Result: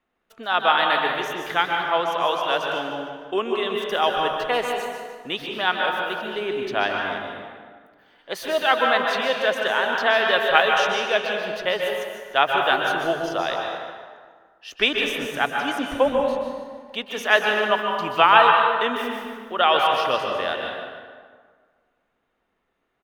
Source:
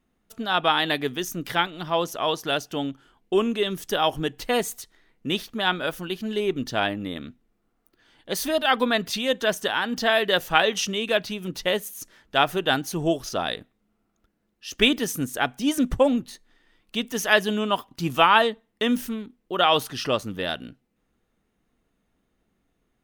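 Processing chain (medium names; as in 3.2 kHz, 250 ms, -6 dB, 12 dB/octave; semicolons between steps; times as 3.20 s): three-band isolator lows -15 dB, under 440 Hz, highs -14 dB, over 3.5 kHz; on a send: feedback delay 149 ms, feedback 40%, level -11 dB; on the sum: plate-style reverb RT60 1.7 s, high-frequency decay 0.55×, pre-delay 115 ms, DRR 1.5 dB; trim +2.5 dB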